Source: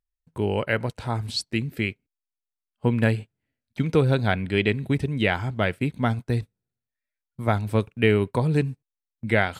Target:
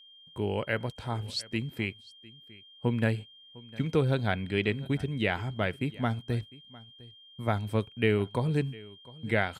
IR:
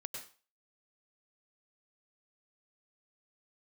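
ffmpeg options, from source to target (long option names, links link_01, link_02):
-af "aecho=1:1:704:0.0841,aeval=exprs='val(0)+0.00501*sin(2*PI*3200*n/s)':channel_layout=same,volume=-6dB"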